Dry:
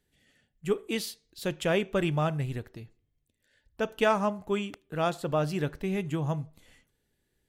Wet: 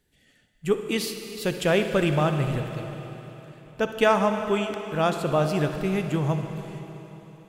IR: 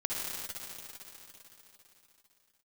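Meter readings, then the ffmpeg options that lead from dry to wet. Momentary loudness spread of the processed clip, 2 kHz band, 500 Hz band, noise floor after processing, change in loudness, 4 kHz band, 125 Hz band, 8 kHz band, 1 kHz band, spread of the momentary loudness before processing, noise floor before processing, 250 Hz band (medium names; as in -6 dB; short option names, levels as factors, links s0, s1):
17 LU, +5.5 dB, +5.5 dB, -63 dBFS, +5.0 dB, +5.5 dB, +5.5 dB, +5.5 dB, +5.5 dB, 11 LU, -77 dBFS, +5.5 dB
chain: -filter_complex "[0:a]asplit=2[s0][s1];[1:a]atrim=start_sample=2205[s2];[s1][s2]afir=irnorm=-1:irlink=0,volume=0.316[s3];[s0][s3]amix=inputs=2:normalize=0,volume=1.33"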